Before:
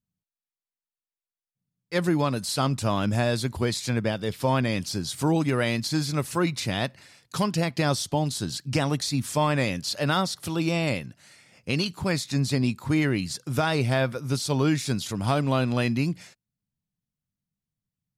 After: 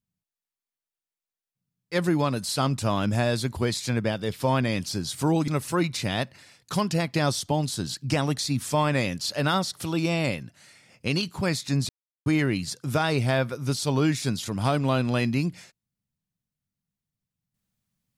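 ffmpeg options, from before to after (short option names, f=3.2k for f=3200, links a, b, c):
-filter_complex "[0:a]asplit=4[a][b][c][d];[a]atrim=end=5.482[e];[b]atrim=start=6.108:end=12.52,asetpts=PTS-STARTPTS,afade=t=out:st=6.408:d=0.004:c=hsin[f];[c]atrim=start=12.52:end=12.89,asetpts=PTS-STARTPTS,volume=0[g];[d]atrim=start=12.89,asetpts=PTS-STARTPTS,afade=t=in:d=0.004:c=hsin[h];[f][g][h]concat=n=3:v=0:a=1[i];[e][i]acrossfade=d=0.004:c1=hsin:c2=hsin"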